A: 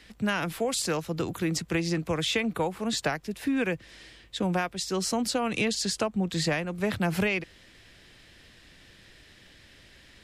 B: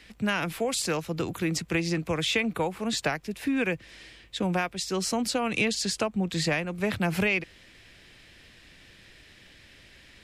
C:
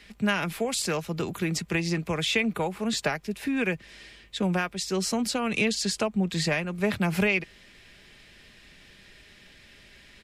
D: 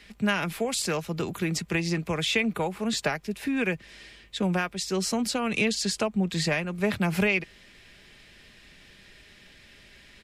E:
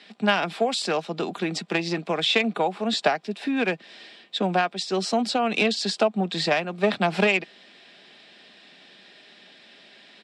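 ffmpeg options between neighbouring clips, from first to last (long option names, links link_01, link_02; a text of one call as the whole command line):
ffmpeg -i in.wav -af "equalizer=frequency=2400:width_type=o:width=0.47:gain=4" out.wav
ffmpeg -i in.wav -af "aecho=1:1:4.9:0.32" out.wav
ffmpeg -i in.wav -af anull out.wav
ffmpeg -i in.wav -filter_complex "[0:a]asplit=2[link_01][link_02];[link_02]acrusher=bits=2:mix=0:aa=0.5,volume=-7dB[link_03];[link_01][link_03]amix=inputs=2:normalize=0,highpass=frequency=200:width=0.5412,highpass=frequency=200:width=1.3066,equalizer=frequency=720:width_type=q:width=4:gain=9,equalizer=frequency=2100:width_type=q:width=4:gain=-4,equalizer=frequency=3700:width_type=q:width=4:gain=5,equalizer=frequency=6500:width_type=q:width=4:gain=-9,lowpass=frequency=7400:width=0.5412,lowpass=frequency=7400:width=1.3066,volume=2.5dB" out.wav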